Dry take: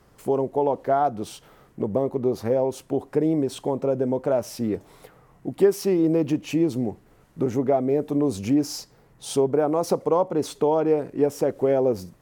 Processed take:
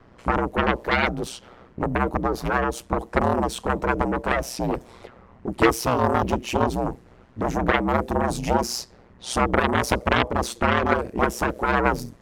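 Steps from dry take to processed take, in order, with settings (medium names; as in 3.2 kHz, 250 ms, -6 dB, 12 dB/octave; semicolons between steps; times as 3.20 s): Chebyshev shaper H 6 -14 dB, 7 -6 dB, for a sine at -7.5 dBFS; ring modulator 61 Hz; level-controlled noise filter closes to 2.9 kHz, open at -23 dBFS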